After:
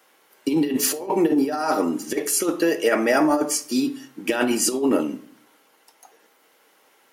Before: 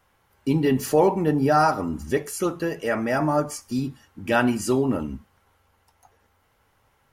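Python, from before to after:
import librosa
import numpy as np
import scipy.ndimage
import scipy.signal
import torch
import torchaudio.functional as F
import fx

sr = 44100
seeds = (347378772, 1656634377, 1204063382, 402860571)

y = scipy.signal.sosfilt(scipy.signal.butter(4, 290.0, 'highpass', fs=sr, output='sos'), x)
y = fx.peak_eq(y, sr, hz=1000.0, db=-7.5, octaves=1.9)
y = fx.over_compress(y, sr, threshold_db=-28.0, ratio=-0.5)
y = fx.room_shoebox(y, sr, seeds[0], volume_m3=480.0, walls='furnished', distance_m=0.56)
y = F.gain(torch.from_numpy(y), 8.5).numpy()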